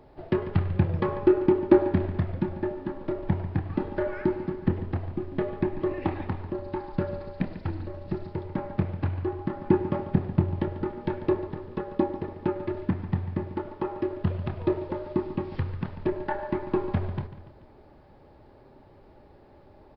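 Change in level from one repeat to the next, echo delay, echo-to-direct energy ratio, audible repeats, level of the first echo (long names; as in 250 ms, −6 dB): −5.5 dB, 144 ms, −12.5 dB, 3, −14.0 dB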